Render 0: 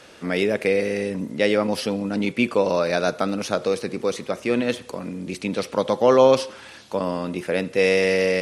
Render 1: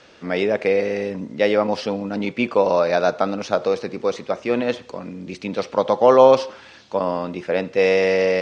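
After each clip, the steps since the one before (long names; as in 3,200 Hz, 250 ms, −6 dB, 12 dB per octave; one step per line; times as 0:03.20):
low-pass filter 6,300 Hz 24 dB per octave
dynamic equaliser 790 Hz, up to +8 dB, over −34 dBFS, Q 0.9
level −2 dB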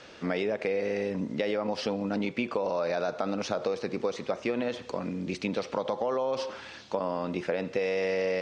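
brickwall limiter −12 dBFS, peak gain reduction 10.5 dB
downward compressor, threshold −26 dBFS, peak gain reduction 9.5 dB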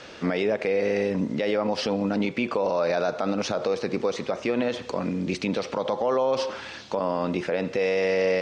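brickwall limiter −21 dBFS, peak gain reduction 6 dB
level +6 dB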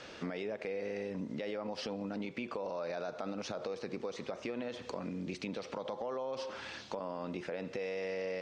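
downward compressor 3 to 1, threshold −32 dBFS, peak gain reduction 9.5 dB
level −6 dB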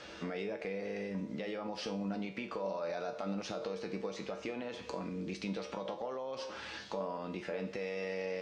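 tuned comb filter 65 Hz, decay 0.38 s, harmonics odd, mix 80%
level +9.5 dB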